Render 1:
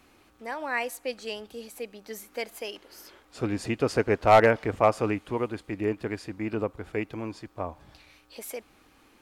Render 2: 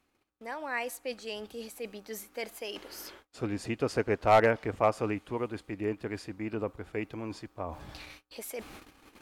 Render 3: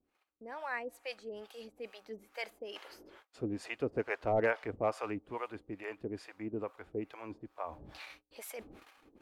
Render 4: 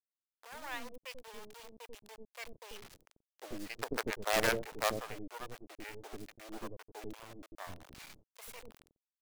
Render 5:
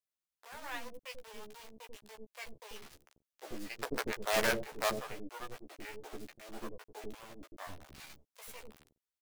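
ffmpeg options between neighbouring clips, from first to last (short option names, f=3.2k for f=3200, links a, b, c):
-af "agate=range=-28dB:threshold=-55dB:ratio=16:detection=peak,areverse,acompressor=mode=upward:threshold=-29dB:ratio=2.5,areverse,volume=-4.5dB"
-filter_complex "[0:a]bass=f=250:g=-6,treble=f=4k:g=-6,acrossover=split=550[a][b];[a]aeval=exprs='val(0)*(1-1/2+1/2*cos(2*PI*2.3*n/s))':c=same[c];[b]aeval=exprs='val(0)*(1-1/2-1/2*cos(2*PI*2.3*n/s))':c=same[d];[c][d]amix=inputs=2:normalize=0,volume=1dB"
-filter_complex "[0:a]acrusher=bits=5:dc=4:mix=0:aa=0.000001,acrossover=split=480[a][b];[a]adelay=90[c];[c][b]amix=inputs=2:normalize=0"
-filter_complex "[0:a]asplit=2[a][b];[b]adelay=14,volume=-4dB[c];[a][c]amix=inputs=2:normalize=0,volume=-1.5dB"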